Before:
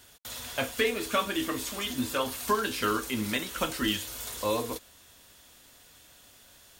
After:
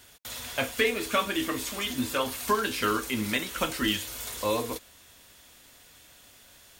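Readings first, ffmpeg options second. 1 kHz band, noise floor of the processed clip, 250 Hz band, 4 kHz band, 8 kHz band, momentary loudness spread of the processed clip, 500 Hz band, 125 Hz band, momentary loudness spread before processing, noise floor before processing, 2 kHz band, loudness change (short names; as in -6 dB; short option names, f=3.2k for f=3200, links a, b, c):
+1.0 dB, -55 dBFS, +1.0 dB, +1.5 dB, +1.0 dB, 8 LU, +1.0 dB, +1.0 dB, 8 LU, -56 dBFS, +2.5 dB, +1.5 dB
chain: -af "equalizer=f=2.2k:t=o:w=0.5:g=3,volume=1dB"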